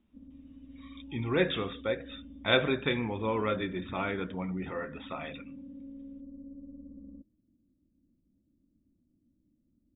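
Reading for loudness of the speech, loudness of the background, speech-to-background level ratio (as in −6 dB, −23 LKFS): −32.0 LKFS, −48.5 LKFS, 16.5 dB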